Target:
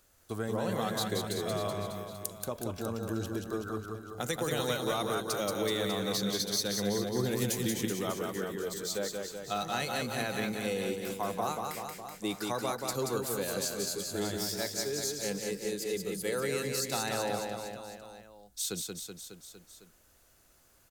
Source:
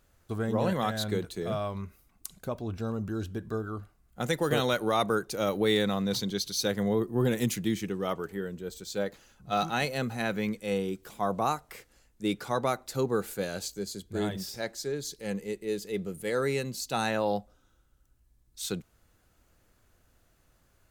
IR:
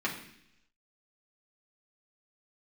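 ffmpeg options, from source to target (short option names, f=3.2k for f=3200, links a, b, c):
-filter_complex "[0:a]bass=f=250:g=-6,treble=f=4k:g=7,acrossover=split=160[a][b];[b]acompressor=threshold=-32dB:ratio=3[c];[a][c]amix=inputs=2:normalize=0,asplit=2[d][e];[e]aecho=0:1:180|378|595.8|835.4|1099:0.631|0.398|0.251|0.158|0.1[f];[d][f]amix=inputs=2:normalize=0"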